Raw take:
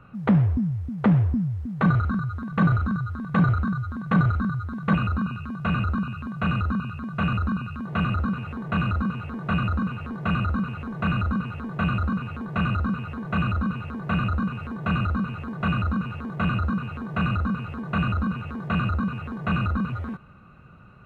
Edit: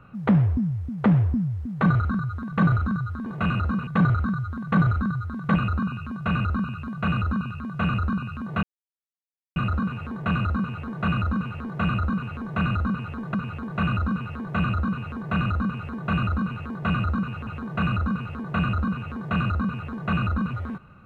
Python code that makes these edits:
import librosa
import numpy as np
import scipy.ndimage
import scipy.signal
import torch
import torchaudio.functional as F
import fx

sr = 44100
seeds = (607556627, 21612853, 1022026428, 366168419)

y = fx.edit(x, sr, fx.insert_silence(at_s=8.02, length_s=0.93),
    fx.cut(start_s=11.8, length_s=0.32),
    fx.move(start_s=16.25, length_s=0.61, to_s=3.26), tone=tone)